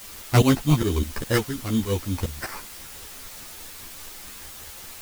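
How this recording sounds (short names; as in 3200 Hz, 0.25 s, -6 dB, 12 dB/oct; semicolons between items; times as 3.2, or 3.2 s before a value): aliases and images of a low sample rate 3400 Hz, jitter 0%; tremolo saw up 4.9 Hz, depth 90%; a quantiser's noise floor 8-bit, dither triangular; a shimmering, thickened sound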